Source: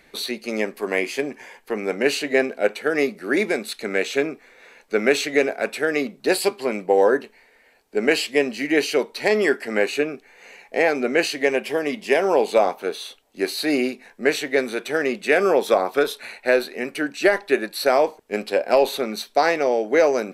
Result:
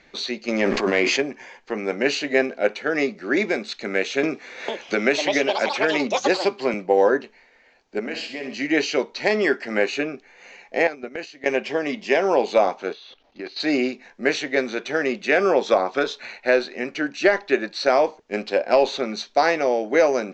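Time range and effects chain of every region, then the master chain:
0.48–1.22 s: treble shelf 4.8 kHz -5 dB + waveshaping leveller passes 1 + decay stretcher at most 24 dB/s
4.23–6.74 s: high-pass 72 Hz + ever faster or slower copies 451 ms, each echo +6 st, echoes 2, each echo -6 dB + three bands compressed up and down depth 70%
7.99–8.54 s: treble shelf 9.6 kHz -6 dB + compression 2.5:1, threshold -30 dBFS + flutter echo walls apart 11.1 m, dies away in 0.55 s
10.87–11.46 s: gate -23 dBFS, range -16 dB + compression 8:1, threshold -26 dBFS
12.93–13.60 s: companding laws mixed up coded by mu + low-pass 4.8 kHz 24 dB/octave + level held to a coarse grid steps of 15 dB
whole clip: steep low-pass 7 kHz 72 dB/octave; band-stop 440 Hz, Q 12

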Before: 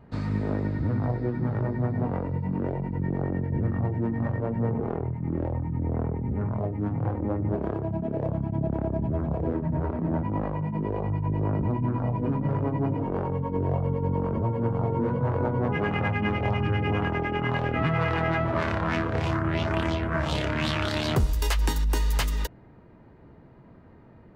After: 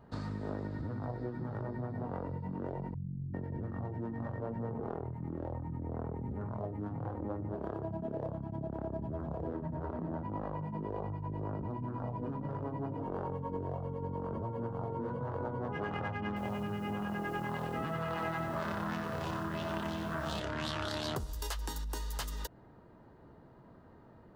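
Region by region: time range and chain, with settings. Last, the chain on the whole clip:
2.94–3.34 s: spectral contrast enhancement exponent 1.6 + inverse Chebyshev low-pass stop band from 880 Hz, stop band 70 dB
16.27–20.40 s: small resonant body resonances 210/2600 Hz, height 8 dB, ringing for 75 ms + bit-crushed delay 93 ms, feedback 55%, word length 8-bit, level -5 dB
whole clip: peaking EQ 2.3 kHz -10.5 dB 0.6 oct; compression, threshold -29 dBFS; bass shelf 460 Hz -7.5 dB

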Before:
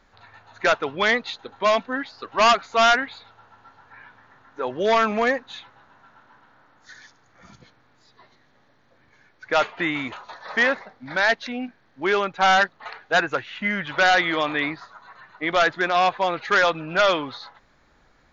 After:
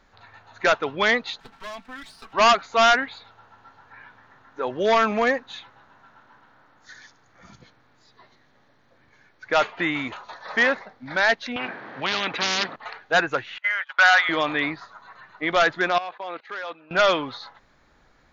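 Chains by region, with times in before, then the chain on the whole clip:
1.40–2.33 s: comb filter that takes the minimum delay 4.5 ms + peaking EQ 470 Hz -9 dB 0.92 oct + compression 2.5:1, threshold -39 dBFS
11.56–12.76 s: band-pass 240–2200 Hz + spectrum-flattening compressor 10:1
13.58–14.29 s: high-pass 720 Hz 24 dB/octave + peaking EQ 1.4 kHz +5 dB 0.64 oct + gate -31 dBFS, range -24 dB
15.98–16.91 s: gate -38 dBFS, range -15 dB + level held to a coarse grid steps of 16 dB + band-pass 330–4600 Hz
whole clip: none

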